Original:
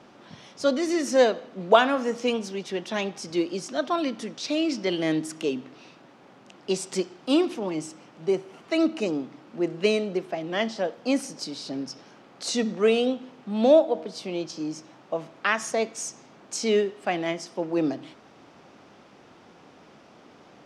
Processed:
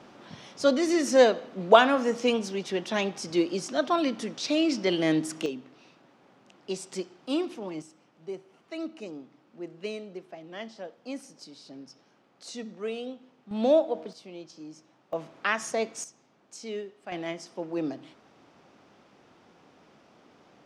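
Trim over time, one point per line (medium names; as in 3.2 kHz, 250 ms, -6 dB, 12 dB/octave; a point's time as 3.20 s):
+0.5 dB
from 5.46 s -7 dB
from 7.82 s -13 dB
from 13.51 s -4.5 dB
from 14.13 s -12.5 dB
from 15.13 s -3 dB
from 16.04 s -13.5 dB
from 17.12 s -6 dB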